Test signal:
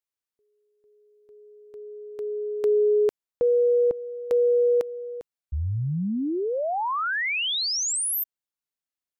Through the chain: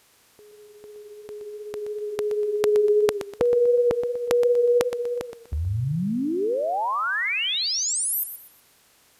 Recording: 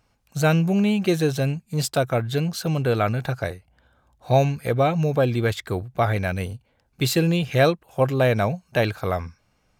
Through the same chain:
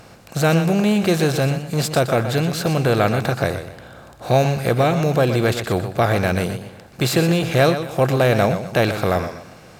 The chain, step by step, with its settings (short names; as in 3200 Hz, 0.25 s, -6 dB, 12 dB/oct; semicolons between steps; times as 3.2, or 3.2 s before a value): per-bin compression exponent 0.6; warbling echo 0.122 s, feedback 33%, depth 82 cents, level -10 dB